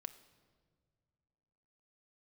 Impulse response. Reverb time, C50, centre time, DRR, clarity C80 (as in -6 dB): not exponential, 14.5 dB, 6 ms, 10.0 dB, 16.0 dB